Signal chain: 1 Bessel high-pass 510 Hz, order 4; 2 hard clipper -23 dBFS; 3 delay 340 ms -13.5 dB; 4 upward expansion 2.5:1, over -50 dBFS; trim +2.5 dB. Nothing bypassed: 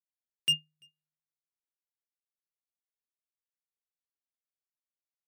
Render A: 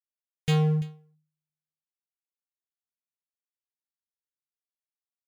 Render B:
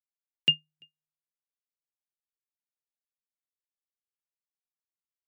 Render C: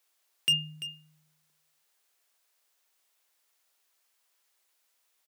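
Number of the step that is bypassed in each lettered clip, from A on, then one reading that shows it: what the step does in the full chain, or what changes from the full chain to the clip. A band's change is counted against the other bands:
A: 1, crest factor change -9.5 dB; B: 2, distortion -9 dB; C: 4, 125 Hz band +5.5 dB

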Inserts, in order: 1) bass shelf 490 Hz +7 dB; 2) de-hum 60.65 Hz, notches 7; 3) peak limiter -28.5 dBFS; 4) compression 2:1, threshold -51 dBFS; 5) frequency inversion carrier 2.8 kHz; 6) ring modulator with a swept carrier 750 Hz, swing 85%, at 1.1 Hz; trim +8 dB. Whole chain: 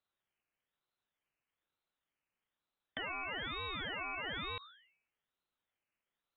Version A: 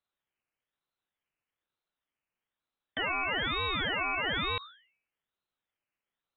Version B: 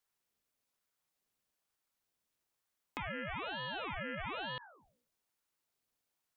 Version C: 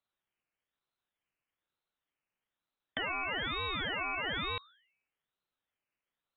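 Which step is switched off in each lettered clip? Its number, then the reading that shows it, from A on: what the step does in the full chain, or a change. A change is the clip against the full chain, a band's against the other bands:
4, mean gain reduction 9.0 dB; 5, 4 kHz band -5.5 dB; 3, mean gain reduction 10.0 dB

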